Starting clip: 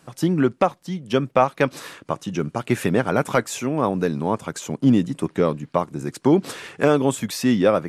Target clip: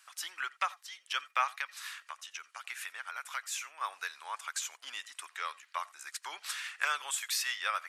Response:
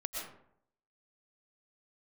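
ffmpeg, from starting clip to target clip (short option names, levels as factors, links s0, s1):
-filter_complex "[0:a]asettb=1/sr,asplit=3[s0][s1][s2];[s0]atrim=end=1.584[s3];[s1]atrim=start=1.58:end=3.81,asetpts=PTS-STARTPTS,afade=t=in:d=0.004:c=qsin,afade=t=out:st=2.226:d=0.004:c=qsin,acompressor=threshold=0.0398:ratio=2.5[s4];[s2]atrim=start=3.806[s5];[s3][s4]acrossfade=d=0.004:c1=hsin:c2=qsin[s6];[s6][s5]acrossfade=d=0.004:c1=qsin:c2=hsin,highpass=f=1300:w=0.5412,highpass=f=1300:w=1.3066[s7];[1:a]atrim=start_sample=2205,atrim=end_sample=3969[s8];[s7][s8]afir=irnorm=-1:irlink=0"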